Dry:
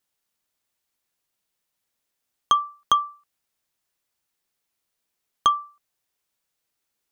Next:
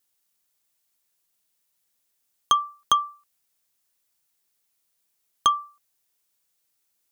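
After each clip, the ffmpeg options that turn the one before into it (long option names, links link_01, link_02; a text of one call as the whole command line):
ffmpeg -i in.wav -af "highshelf=frequency=4900:gain=9.5,volume=-1.5dB" out.wav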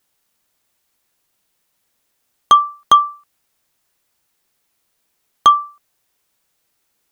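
ffmpeg -i in.wav -af "apsyclip=13dB,highshelf=frequency=3500:gain=-9.5" out.wav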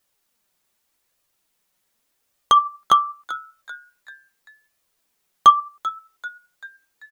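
ffmpeg -i in.wav -filter_complex "[0:a]flanger=delay=1.6:depth=3.9:regen=54:speed=0.84:shape=sinusoidal,asplit=5[link_01][link_02][link_03][link_04][link_05];[link_02]adelay=389,afreqshift=140,volume=-16dB[link_06];[link_03]adelay=778,afreqshift=280,volume=-22.6dB[link_07];[link_04]adelay=1167,afreqshift=420,volume=-29.1dB[link_08];[link_05]adelay=1556,afreqshift=560,volume=-35.7dB[link_09];[link_01][link_06][link_07][link_08][link_09]amix=inputs=5:normalize=0,volume=1dB" out.wav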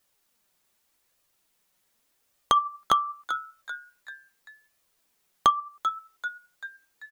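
ffmpeg -i in.wav -af "acompressor=threshold=-22dB:ratio=2.5" out.wav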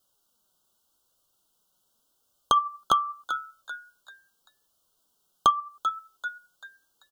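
ffmpeg -i in.wav -af "asuperstop=centerf=2100:order=12:qfactor=1.6" out.wav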